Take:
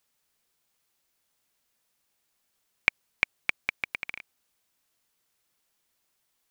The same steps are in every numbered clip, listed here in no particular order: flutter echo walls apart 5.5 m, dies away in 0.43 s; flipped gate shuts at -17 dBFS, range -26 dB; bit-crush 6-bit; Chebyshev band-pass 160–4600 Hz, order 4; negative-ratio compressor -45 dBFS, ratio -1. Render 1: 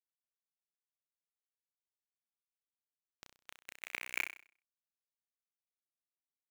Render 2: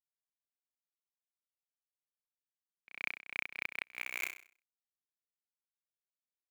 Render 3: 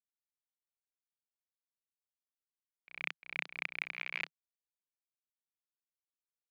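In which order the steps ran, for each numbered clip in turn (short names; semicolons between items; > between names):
flipped gate > Chebyshev band-pass > negative-ratio compressor > bit-crush > flutter echo; Chebyshev band-pass > bit-crush > flutter echo > negative-ratio compressor > flipped gate; flutter echo > bit-crush > Chebyshev band-pass > negative-ratio compressor > flipped gate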